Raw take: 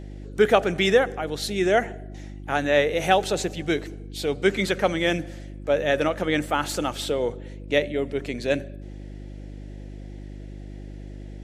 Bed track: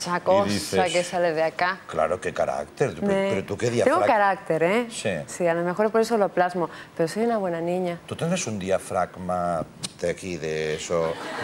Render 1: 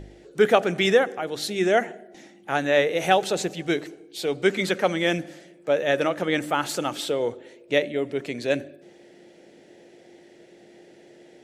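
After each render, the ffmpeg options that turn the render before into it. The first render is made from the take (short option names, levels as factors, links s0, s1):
-af "bandreject=f=50:t=h:w=4,bandreject=f=100:t=h:w=4,bandreject=f=150:t=h:w=4,bandreject=f=200:t=h:w=4,bandreject=f=250:t=h:w=4,bandreject=f=300:t=h:w=4"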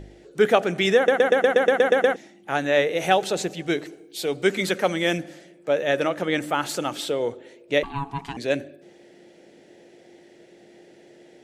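-filter_complex "[0:a]asettb=1/sr,asplit=3[s0][s1][s2];[s0]atrim=end=3.924[s3];[s1]atrim=start=3.92:end=5.18,asetpts=PTS-STARTPTS,afade=t=in:d=0.004:c=qsin,afade=t=out:st=1.256:d=0.004:c=qsin,highshelf=f=8900:g=8[s4];[s2]atrim=start=5.176[s5];[s3][s4]acrossfade=d=0.004:c1=hsin:c2=qsin[s6];[s6][s5]acrossfade=d=0.004:c1=qsin:c2=hsin,asettb=1/sr,asplit=3[s7][s8][s9];[s7]atrim=end=7.834[s10];[s8]atrim=start=7.83:end=8.37,asetpts=PTS-STARTPTS,afade=t=in:d=0.004:c=qsin,afade=t=out:st=0.536:d=0.004:c=qsin,aeval=exprs='val(0)*sin(2*PI*560*n/s)':c=same[s11];[s9]atrim=start=8.366[s12];[s10][s11]acrossfade=d=0.004:c1=hsin:c2=qsin[s13];[s13][s12]acrossfade=d=0.004:c1=qsin:c2=hsin,asplit=11[s14][s15][s16][s17][s18][s19][s20][s21][s22][s23][s24];[s14]atrim=end=1.082[s25];[s15]atrim=start=0.958:end=1.082[s26];[s16]atrim=start=0.958:end=1.082[s27];[s17]atrim=start=0.958:end=1.082[s28];[s18]atrim=start=0.958:end=1.082[s29];[s19]atrim=start=0.958:end=1.082[s30];[s20]atrim=start=0.958:end=1.082[s31];[s21]atrim=start=0.958:end=1.082[s32];[s22]atrim=start=0.958:end=1.082[s33];[s23]atrim=start=0.958:end=1.082[s34];[s24]atrim=start=2.158[s35];[s25][s26]acrossfade=d=0.004:c1=hsin:c2=hsin[s36];[s36][s27]acrossfade=d=0.004:c1=hsin:c2=hsin[s37];[s37][s28]acrossfade=d=0.004:c1=hsin:c2=hsin[s38];[s38][s29]acrossfade=d=0.004:c1=hsin:c2=hsin[s39];[s39][s30]acrossfade=d=0.004:c1=hsin:c2=hsin[s40];[s40][s31]acrossfade=d=0.004:c1=hsin:c2=hsin[s41];[s41][s32]acrossfade=d=0.004:c1=hsin:c2=hsin[s42];[s42][s33]acrossfade=d=0.004:c1=hsin:c2=hsin[s43];[s43][s34]acrossfade=d=0.004:c1=hsin:c2=hsin[s44];[s44][s35]acrossfade=d=0.004:c1=hsin:c2=hsin"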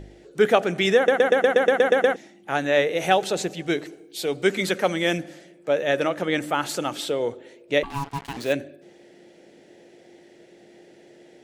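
-filter_complex "[0:a]asettb=1/sr,asplit=3[s0][s1][s2];[s0]atrim=end=7.904[s3];[s1]atrim=start=7.9:end=8.53,asetpts=PTS-STARTPTS,afade=t=in:d=0.004:c=qsin,afade=t=out:st=0.626:d=0.004:c=qsin,acrusher=bits=5:mix=0:aa=0.5[s4];[s2]atrim=start=8.526[s5];[s3][s4]acrossfade=d=0.004:c1=hsin:c2=qsin[s6];[s6][s5]acrossfade=d=0.004:c1=qsin:c2=hsin"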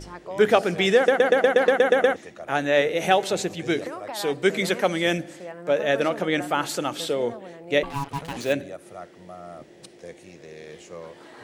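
-filter_complex "[1:a]volume=0.168[s0];[0:a][s0]amix=inputs=2:normalize=0"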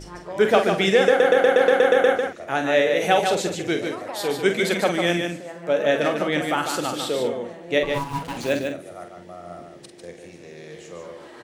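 -filter_complex "[0:a]asplit=2[s0][s1];[s1]adelay=46,volume=0.422[s2];[s0][s2]amix=inputs=2:normalize=0,aecho=1:1:148:0.531"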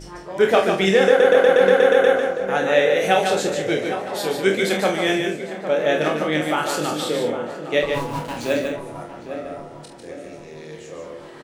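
-filter_complex "[0:a]asplit=2[s0][s1];[s1]adelay=26,volume=0.562[s2];[s0][s2]amix=inputs=2:normalize=0,asplit=2[s3][s4];[s4]adelay=807,lowpass=f=1600:p=1,volume=0.316,asplit=2[s5][s6];[s6]adelay=807,lowpass=f=1600:p=1,volume=0.52,asplit=2[s7][s8];[s8]adelay=807,lowpass=f=1600:p=1,volume=0.52,asplit=2[s9][s10];[s10]adelay=807,lowpass=f=1600:p=1,volume=0.52,asplit=2[s11][s12];[s12]adelay=807,lowpass=f=1600:p=1,volume=0.52,asplit=2[s13][s14];[s14]adelay=807,lowpass=f=1600:p=1,volume=0.52[s15];[s5][s7][s9][s11][s13][s15]amix=inputs=6:normalize=0[s16];[s3][s16]amix=inputs=2:normalize=0"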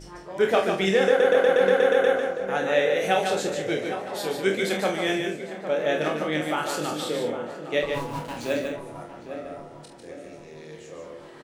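-af "volume=0.562"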